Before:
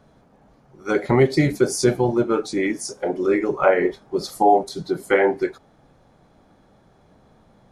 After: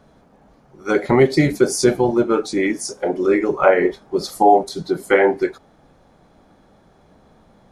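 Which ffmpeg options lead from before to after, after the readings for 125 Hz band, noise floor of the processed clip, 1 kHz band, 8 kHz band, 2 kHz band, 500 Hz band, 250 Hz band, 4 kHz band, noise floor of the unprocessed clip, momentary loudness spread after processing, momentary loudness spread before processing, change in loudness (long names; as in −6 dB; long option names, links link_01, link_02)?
0.0 dB, −54 dBFS, +3.0 dB, +3.0 dB, +3.0 dB, +3.0 dB, +3.0 dB, +3.0 dB, −56 dBFS, 10 LU, 10 LU, +3.0 dB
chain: -af "equalizer=frequency=120:width=4:gain=-6,volume=3dB"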